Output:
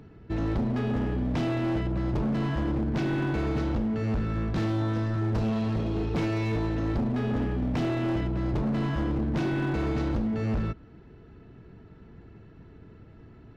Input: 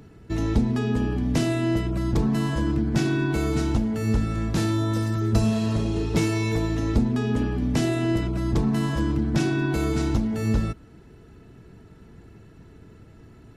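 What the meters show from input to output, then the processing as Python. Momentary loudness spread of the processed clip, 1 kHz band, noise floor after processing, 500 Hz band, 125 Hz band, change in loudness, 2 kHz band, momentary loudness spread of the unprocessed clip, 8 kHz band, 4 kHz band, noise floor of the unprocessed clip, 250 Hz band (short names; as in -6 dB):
1 LU, -2.0 dB, -51 dBFS, -3.5 dB, -4.0 dB, -4.0 dB, -4.5 dB, 2 LU, under -15 dB, -7.5 dB, -49 dBFS, -4.0 dB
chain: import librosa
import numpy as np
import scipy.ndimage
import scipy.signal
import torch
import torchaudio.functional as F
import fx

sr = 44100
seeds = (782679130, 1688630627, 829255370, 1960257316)

y = scipy.ndimage.gaussian_filter1d(x, 2.0, mode='constant')
y = np.clip(y, -10.0 ** (-22.5 / 20.0), 10.0 ** (-22.5 / 20.0))
y = y * 10.0 ** (-1.5 / 20.0)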